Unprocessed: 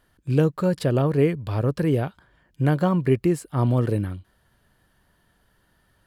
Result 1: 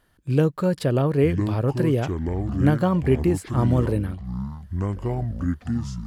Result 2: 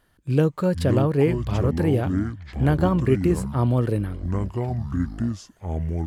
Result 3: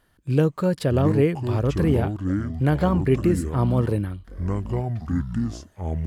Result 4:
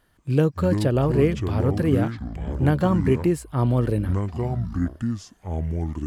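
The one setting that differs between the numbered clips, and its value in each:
echoes that change speed, time: 0.815, 0.33, 0.488, 0.151 s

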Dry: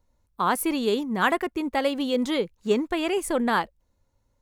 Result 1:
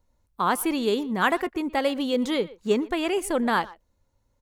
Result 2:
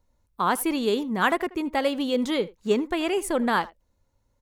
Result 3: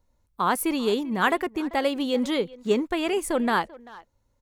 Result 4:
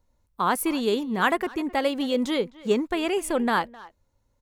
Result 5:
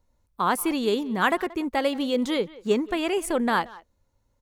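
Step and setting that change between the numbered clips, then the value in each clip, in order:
speakerphone echo, time: 120, 80, 390, 260, 180 ms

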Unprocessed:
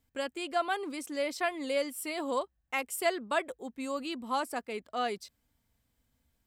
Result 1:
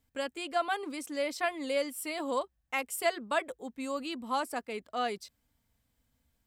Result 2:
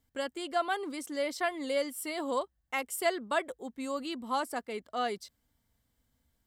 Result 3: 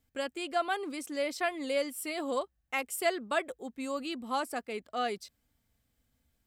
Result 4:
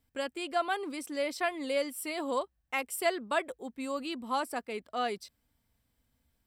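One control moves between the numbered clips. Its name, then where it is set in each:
notch, frequency: 370, 2500, 970, 6700 Hz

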